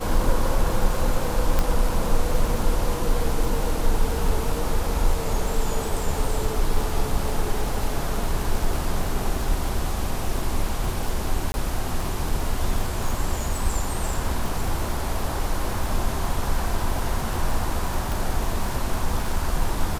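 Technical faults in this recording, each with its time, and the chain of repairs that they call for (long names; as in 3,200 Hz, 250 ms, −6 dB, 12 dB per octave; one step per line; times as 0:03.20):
surface crackle 53 per second −26 dBFS
0:01.59: click
0:11.52–0:11.54: drop-out 20 ms
0:18.12: click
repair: click removal
repair the gap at 0:11.52, 20 ms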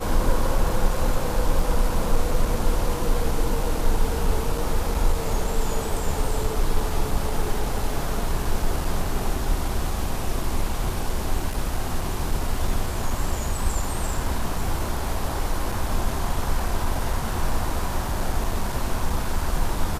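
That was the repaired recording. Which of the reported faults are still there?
0:01.59: click
0:18.12: click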